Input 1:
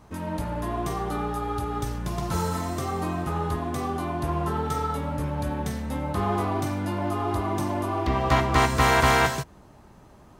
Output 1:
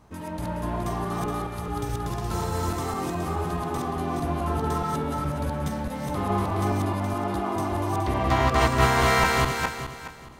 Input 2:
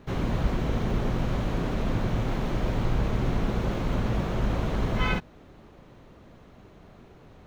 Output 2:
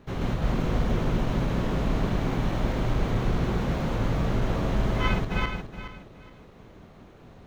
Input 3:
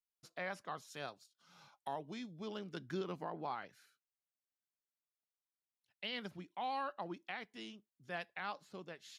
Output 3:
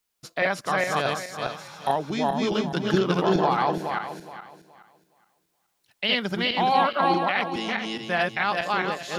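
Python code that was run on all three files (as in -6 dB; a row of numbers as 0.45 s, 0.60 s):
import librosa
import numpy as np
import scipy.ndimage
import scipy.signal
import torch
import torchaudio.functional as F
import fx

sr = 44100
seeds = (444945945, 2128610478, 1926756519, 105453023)

y = fx.reverse_delay_fb(x, sr, ms=210, feedback_pct=50, wet_db=0.0)
y = y * 10.0 ** (-26 / 20.0) / np.sqrt(np.mean(np.square(y)))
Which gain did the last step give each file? -3.5 dB, -2.0 dB, +17.0 dB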